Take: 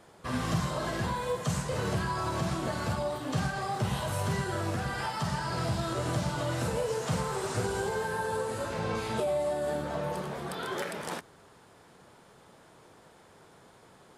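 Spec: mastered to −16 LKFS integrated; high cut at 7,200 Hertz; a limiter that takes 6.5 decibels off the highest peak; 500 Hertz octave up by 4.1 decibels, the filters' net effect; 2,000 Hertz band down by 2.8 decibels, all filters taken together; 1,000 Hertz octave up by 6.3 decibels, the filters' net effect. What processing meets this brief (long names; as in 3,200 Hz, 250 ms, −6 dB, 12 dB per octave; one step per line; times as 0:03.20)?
low-pass filter 7,200 Hz
parametric band 500 Hz +3 dB
parametric band 1,000 Hz +8.5 dB
parametric band 2,000 Hz −8.5 dB
level +15.5 dB
brickwall limiter −7 dBFS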